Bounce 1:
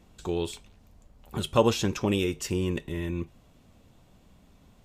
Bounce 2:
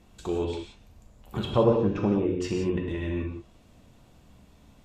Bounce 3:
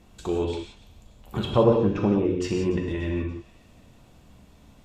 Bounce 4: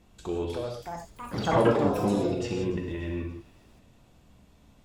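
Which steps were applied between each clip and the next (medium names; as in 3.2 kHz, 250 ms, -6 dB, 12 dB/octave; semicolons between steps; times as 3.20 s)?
low-pass that closes with the level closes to 820 Hz, closed at -21.5 dBFS; gated-style reverb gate 200 ms flat, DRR 1 dB
feedback echo behind a high-pass 290 ms, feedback 46%, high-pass 2.1 kHz, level -18 dB; trim +2.5 dB
ever faster or slower copies 366 ms, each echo +6 st, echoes 3; trim -5 dB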